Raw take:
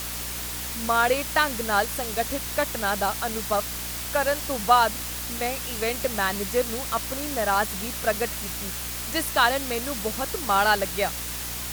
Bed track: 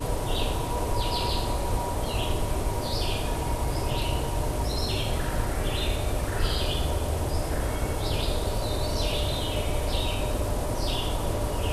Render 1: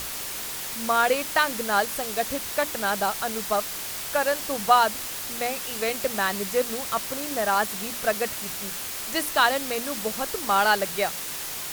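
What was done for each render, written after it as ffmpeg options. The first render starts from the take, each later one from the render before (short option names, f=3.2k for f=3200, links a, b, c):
-af "bandreject=f=60:t=h:w=6,bandreject=f=120:t=h:w=6,bandreject=f=180:t=h:w=6,bandreject=f=240:t=h:w=6,bandreject=f=300:t=h:w=6"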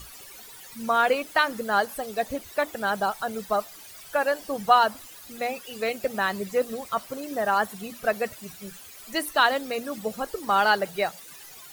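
-af "afftdn=nr=16:nf=-33"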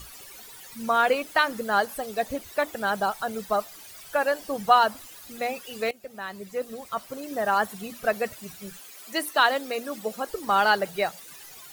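-filter_complex "[0:a]asettb=1/sr,asplit=3[a][b][c];[a]atrim=end=8.804[d];[b]atrim=start=8.8:end=10.28,asetpts=PTS-STARTPTS,afade=t=in:d=0.004:c=qsin,afade=t=out:st=1.476:d=0.004:c=qsin,highpass=230[e];[c]atrim=start=10.276[f];[d][e]acrossfade=d=0.004:c1=hsin:c2=qsin[g];[g][f]acrossfade=d=0.004:c1=qsin:c2=hsin,asplit=2[h][i];[h]atrim=end=5.91,asetpts=PTS-STARTPTS,afade=t=out:st=5.906:d=0.004:c=hsin:silence=0.133352[j];[i]atrim=start=5.91,asetpts=PTS-STARTPTS,afade=t=in:d=1.62:silence=0.133352[k];[j][k]concat=n=2:v=0:a=1"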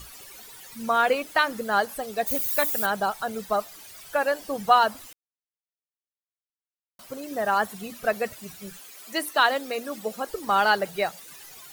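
-filter_complex "[0:a]asplit=3[a][b][c];[a]afade=t=out:st=2.26:d=0.02[d];[b]aemphasis=mode=production:type=75fm,afade=t=in:st=2.26:d=0.02,afade=t=out:st=2.85:d=0.02[e];[c]afade=t=in:st=2.85:d=0.02[f];[d][e][f]amix=inputs=3:normalize=0,asplit=3[g][h][i];[g]atrim=end=5.13,asetpts=PTS-STARTPTS,afade=t=out:st=5.126:d=0.004:c=hsin[j];[h]atrim=start=5.13:end=6.99,asetpts=PTS-STARTPTS,volume=0[k];[i]atrim=start=6.99,asetpts=PTS-STARTPTS,afade=t=in:d=0.004:c=hsin[l];[j][k][l]concat=n=3:v=0:a=1"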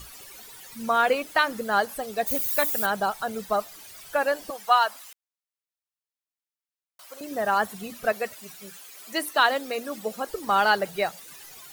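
-filter_complex "[0:a]asettb=1/sr,asplit=3[a][b][c];[a]atrim=end=4.504[d];[b]atrim=start=4.5:end=7.21,asetpts=PTS-STARTPTS,afade=t=in:d=0.004:c=qsin,afade=t=out:st=2.706:d=0.004:c=qsin,highpass=760[e];[c]atrim=start=7.206[f];[d][e]acrossfade=d=0.004:c1=hsin:c2=qsin[g];[g][f]acrossfade=d=0.004:c1=qsin:c2=hsin,asettb=1/sr,asplit=3[h][i][j];[h]atrim=end=8.124[k];[i]atrim=start=8.12:end=8.94,asetpts=PTS-STARTPTS,afade=t=in:d=0.004:c=qsin,afade=t=out:st=0.816:d=0.004:c=qsin,highpass=f=380:p=1[l];[j]atrim=start=8.936[m];[k][l]acrossfade=d=0.004:c1=hsin:c2=qsin[n];[n][m]acrossfade=d=0.004:c1=qsin:c2=hsin"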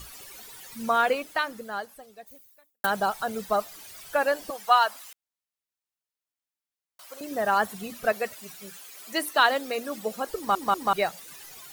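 -filter_complex "[0:a]asplit=5[a][b][c][d][e];[a]atrim=end=2.84,asetpts=PTS-STARTPTS,afade=t=out:st=0.88:d=1.96:c=qua[f];[b]atrim=start=2.84:end=10.552,asetpts=PTS-STARTPTS,afade=t=in:d=0.004:c=hsin[g];[c]atrim=start=10.358:end=10.552[h];[d]atrim=start=10.358:end=10.552[i];[e]atrim=start=10.928[j];[f][g]concat=n=2:v=0:a=1[k];[k][h]acrossfade=d=0.004:c1=hsin:c2=hsin[l];[l][i]acrossfade=d=0.004:c1=hsin:c2=hsin[m];[m][j]acrossfade=d=0.004:c1=hsin:c2=hsin"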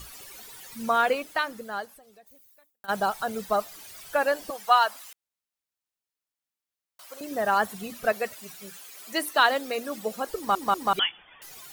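-filter_complex "[0:a]asplit=3[a][b][c];[a]afade=t=out:st=1.97:d=0.02[d];[b]acompressor=threshold=-53dB:ratio=2.5:attack=3.2:release=140:knee=1:detection=peak,afade=t=in:st=1.97:d=0.02,afade=t=out:st=2.88:d=0.02[e];[c]afade=t=in:st=2.88:d=0.02[f];[d][e][f]amix=inputs=3:normalize=0,asettb=1/sr,asplit=3[g][h][i];[g]atrim=end=10.994[j];[h]atrim=start=10.99:end=11.42,asetpts=PTS-STARTPTS,afade=t=in:d=0.004:c=qsin,afade=t=out:st=0.426:d=0.004:c=qsin,lowpass=f=3.1k:t=q:w=0.5098,lowpass=f=3.1k:t=q:w=0.6013,lowpass=f=3.1k:t=q:w=0.9,lowpass=f=3.1k:t=q:w=2.563,afreqshift=-3600[k];[i]atrim=start=11.416[l];[j][k]acrossfade=d=0.004:c1=hsin:c2=qsin[m];[m][l]acrossfade=d=0.004:c1=qsin:c2=hsin"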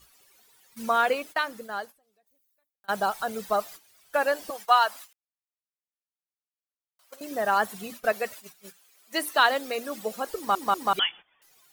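-af "agate=range=-15dB:threshold=-41dB:ratio=16:detection=peak,lowshelf=f=170:g=-6.5"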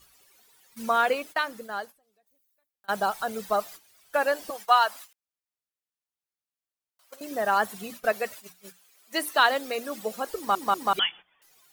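-af "bandreject=f=60:t=h:w=6,bandreject=f=120:t=h:w=6,bandreject=f=180:t=h:w=6"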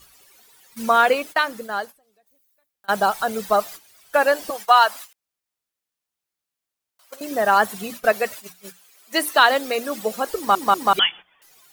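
-af "volume=7dB,alimiter=limit=-3dB:level=0:latency=1"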